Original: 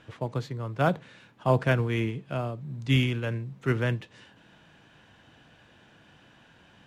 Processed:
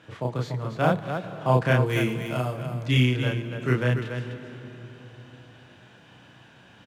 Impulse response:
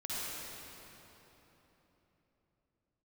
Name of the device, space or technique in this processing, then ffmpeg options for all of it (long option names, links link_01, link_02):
ducked reverb: -filter_complex "[0:a]asettb=1/sr,asplit=3[link_01][link_02][link_03];[link_01]atrim=end=1.864[link_04];[link_02]atrim=start=1.86:end=2.54,asetpts=PTS-STARTPTS,afade=type=in:duration=0.004:curve=qsin,afade=type=out:start_time=0.676:duration=0.004:curve=qsin,aemphasis=mode=production:type=50fm[link_05];[link_03]atrim=start=2.536[link_06];[link_04][link_05]acrossfade=duration=0.004:curve1=hsin:curve2=qsin[link_07];[link_07][link_06]acrossfade=duration=0.004:curve1=qsin:curve2=hsin,highpass=81,aecho=1:1:32.07|288.6:0.891|0.447,asplit=3[link_08][link_09][link_10];[1:a]atrim=start_sample=2205[link_11];[link_09][link_11]afir=irnorm=-1:irlink=0[link_12];[link_10]apad=whole_len=315336[link_13];[link_12][link_13]sidechaincompress=threshold=-33dB:ratio=8:attack=16:release=147,volume=-12.5dB[link_14];[link_08][link_14]amix=inputs=2:normalize=0"